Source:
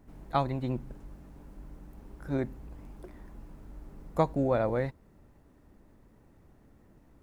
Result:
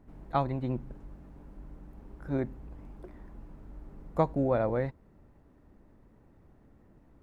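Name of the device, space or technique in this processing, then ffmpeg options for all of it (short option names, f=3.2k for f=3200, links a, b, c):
through cloth: -af "highshelf=f=3.7k:g=-11"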